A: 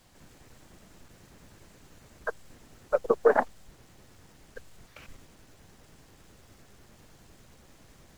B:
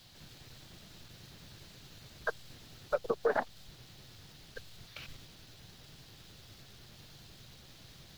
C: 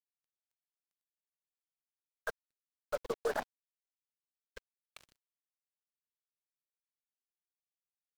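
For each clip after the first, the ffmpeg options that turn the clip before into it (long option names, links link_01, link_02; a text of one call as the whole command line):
ffmpeg -i in.wav -af "lowshelf=frequency=200:gain=-8,alimiter=limit=-17dB:level=0:latency=1:release=208,equalizer=frequency=125:width_type=o:width=1:gain=7,equalizer=frequency=250:width_type=o:width=1:gain=-5,equalizer=frequency=500:width_type=o:width=1:gain=-5,equalizer=frequency=1000:width_type=o:width=1:gain=-6,equalizer=frequency=2000:width_type=o:width=1:gain=-4,equalizer=frequency=4000:width_type=o:width=1:gain=9,equalizer=frequency=8000:width_type=o:width=1:gain=-8,volume=4.5dB" out.wav
ffmpeg -i in.wav -af "acrusher=bits=5:mix=0:aa=0.5,volume=-4.5dB" out.wav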